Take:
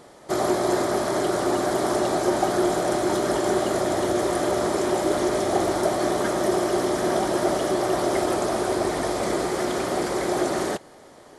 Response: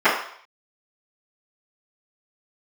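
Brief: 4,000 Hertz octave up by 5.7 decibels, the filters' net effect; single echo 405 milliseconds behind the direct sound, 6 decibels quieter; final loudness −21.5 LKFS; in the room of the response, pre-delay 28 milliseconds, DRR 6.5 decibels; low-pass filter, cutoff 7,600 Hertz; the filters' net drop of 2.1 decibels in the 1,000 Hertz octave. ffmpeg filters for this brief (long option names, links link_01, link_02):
-filter_complex "[0:a]lowpass=7600,equalizer=frequency=1000:width_type=o:gain=-3.5,equalizer=frequency=4000:width_type=o:gain=7.5,aecho=1:1:405:0.501,asplit=2[link_01][link_02];[1:a]atrim=start_sample=2205,adelay=28[link_03];[link_02][link_03]afir=irnorm=-1:irlink=0,volume=-30.5dB[link_04];[link_01][link_04]amix=inputs=2:normalize=0,volume=1dB"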